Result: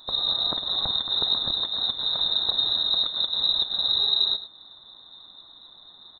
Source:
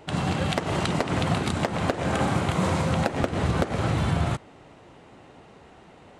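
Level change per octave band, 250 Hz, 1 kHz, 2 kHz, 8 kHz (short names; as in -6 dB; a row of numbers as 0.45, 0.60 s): -20.5 dB, -11.5 dB, under -15 dB, under -40 dB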